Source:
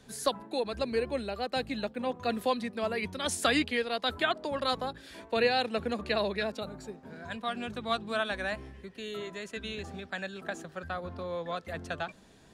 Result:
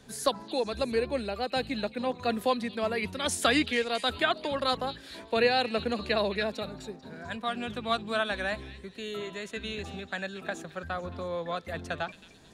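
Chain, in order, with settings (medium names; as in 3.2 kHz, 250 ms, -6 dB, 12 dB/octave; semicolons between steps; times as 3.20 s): repeats whose band climbs or falls 220 ms, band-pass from 3.1 kHz, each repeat 0.7 oct, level -11.5 dB; trim +2 dB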